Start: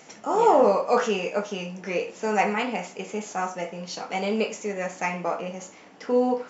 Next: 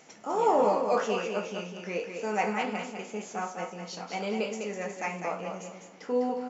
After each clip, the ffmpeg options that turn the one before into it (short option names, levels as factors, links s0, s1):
-af "aecho=1:1:202|404|606|808:0.501|0.15|0.0451|0.0135,volume=0.501"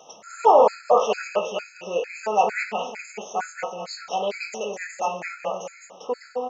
-af "lowshelf=f=400:t=q:w=1.5:g=-9.5,afftfilt=real='re*gt(sin(2*PI*2.2*pts/sr)*(1-2*mod(floor(b*sr/1024/1300),2)),0)':imag='im*gt(sin(2*PI*2.2*pts/sr)*(1-2*mod(floor(b*sr/1024/1300),2)),0)':win_size=1024:overlap=0.75,volume=2.66"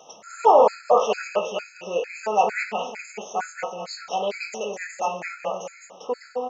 -af anull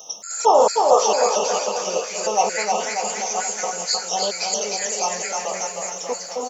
-filter_complex "[0:a]asplit=2[s0][s1];[s1]aecho=0:1:310|589|840.1|1066|1269:0.631|0.398|0.251|0.158|0.1[s2];[s0][s2]amix=inputs=2:normalize=0,aexciter=amount=7.9:drive=2.6:freq=3900"